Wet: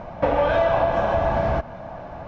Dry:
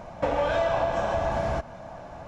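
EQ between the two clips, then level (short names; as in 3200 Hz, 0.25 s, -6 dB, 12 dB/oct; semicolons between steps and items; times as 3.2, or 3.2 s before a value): air absorption 200 m; +6.0 dB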